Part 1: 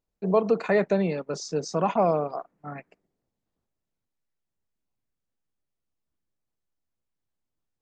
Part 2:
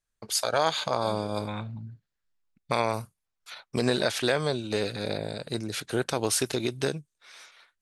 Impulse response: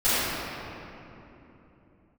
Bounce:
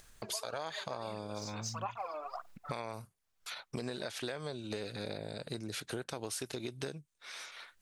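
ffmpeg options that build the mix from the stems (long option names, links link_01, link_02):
-filter_complex "[0:a]highpass=1400,aphaser=in_gain=1:out_gain=1:delay=3.2:decay=0.73:speed=1.6:type=sinusoidal,volume=-1.5dB[link_01];[1:a]acompressor=mode=upward:threshold=-33dB:ratio=2.5,volume=-4dB,asplit=2[link_02][link_03];[link_03]apad=whole_len=344716[link_04];[link_01][link_04]sidechaincompress=threshold=-35dB:ratio=8:attack=16:release=158[link_05];[link_05][link_02]amix=inputs=2:normalize=0,acompressor=threshold=-36dB:ratio=6"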